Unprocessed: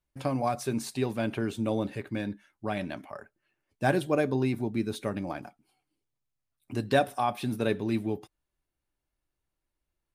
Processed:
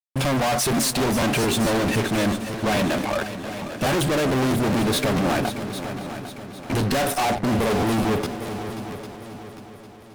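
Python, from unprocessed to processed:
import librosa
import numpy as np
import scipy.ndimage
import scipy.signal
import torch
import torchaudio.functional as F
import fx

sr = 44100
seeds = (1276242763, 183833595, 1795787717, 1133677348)

p1 = fx.steep_lowpass(x, sr, hz=880.0, slope=72, at=(7.25, 7.79))
p2 = fx.fuzz(p1, sr, gain_db=47.0, gate_db=-55.0)
p3 = p2 + fx.echo_heads(p2, sr, ms=267, heads='second and third', feedback_pct=48, wet_db=-12.0, dry=0)
p4 = fx.buffer_crackle(p3, sr, first_s=0.76, period_s=0.22, block=512, kind='repeat')
y = p4 * 10.0 ** (-7.0 / 20.0)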